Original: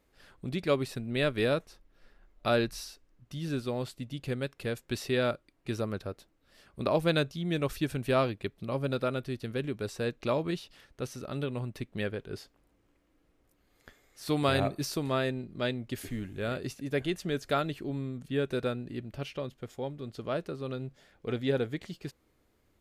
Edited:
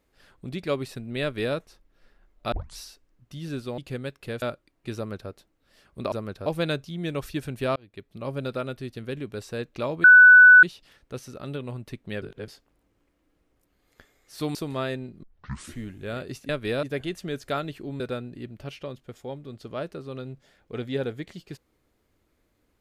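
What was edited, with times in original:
1.22–1.56 copy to 16.84
2.52 tape start 0.25 s
3.78–4.15 cut
4.79–5.23 cut
5.77–6.11 copy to 6.93
8.23–8.74 fade in
10.51 add tone 1490 Hz -7.5 dBFS 0.59 s
12.1–12.36 reverse
14.43–14.9 cut
15.58 tape start 0.55 s
18.01–18.54 cut

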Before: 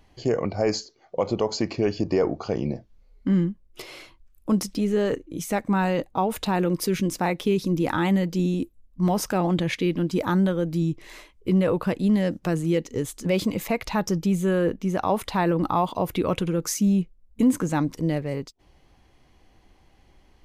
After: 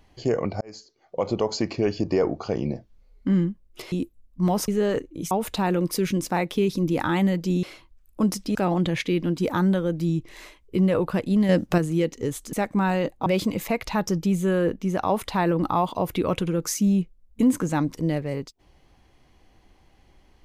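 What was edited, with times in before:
0.61–1.3 fade in
3.92–4.84 swap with 8.52–9.28
5.47–6.2 move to 13.26
12.22–12.51 gain +5.5 dB

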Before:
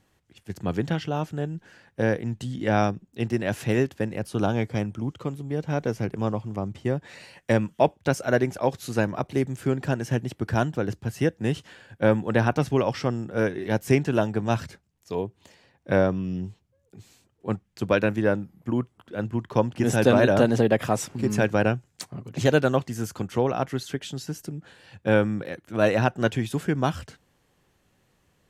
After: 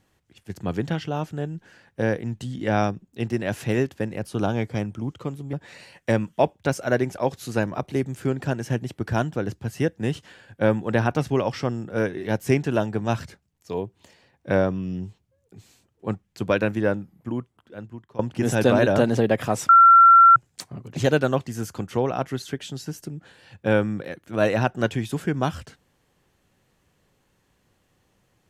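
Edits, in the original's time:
5.53–6.94 cut
18.31–19.6 fade out, to -20.5 dB
21.1–21.77 bleep 1360 Hz -8 dBFS

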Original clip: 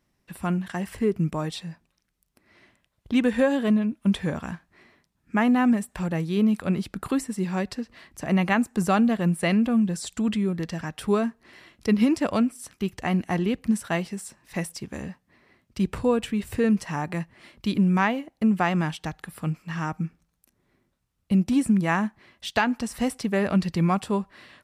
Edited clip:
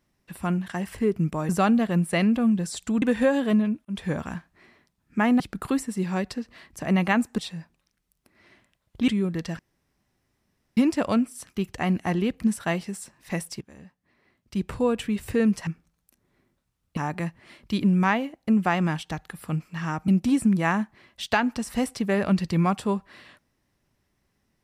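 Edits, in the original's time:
1.49–3.19 swap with 8.79–10.32
4.02–4.27 fade in
5.57–6.81 cut
10.83–12.01 room tone
14.85–16.31 fade in, from -18 dB
20.02–21.32 move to 16.91

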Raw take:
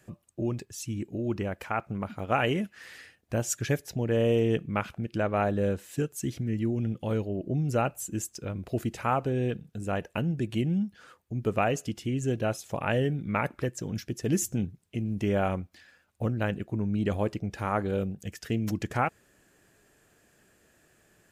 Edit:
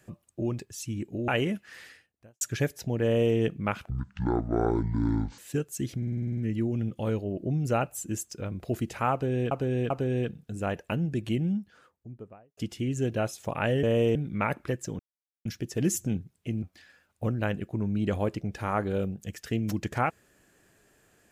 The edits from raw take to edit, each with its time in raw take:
1.28–2.37 cut
2.9–3.5 fade out quadratic
4.13–4.45 copy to 13.09
4.99–5.82 speed 56%
6.41 stutter 0.05 s, 9 plays
9.16–9.55 loop, 3 plays
10.52–11.83 studio fade out
13.93 insert silence 0.46 s
15.1–15.61 cut

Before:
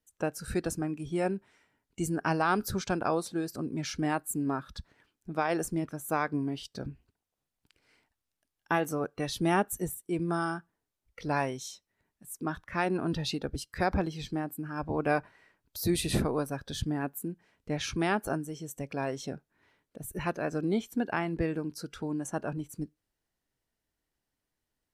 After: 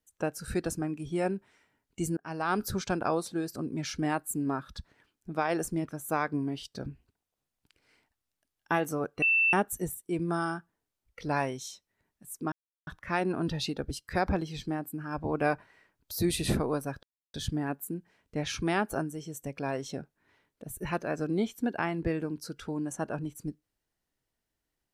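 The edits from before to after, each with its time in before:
2.17–2.6 fade in
9.22–9.53 bleep 2670 Hz -21 dBFS
12.52 insert silence 0.35 s
16.68 insert silence 0.31 s

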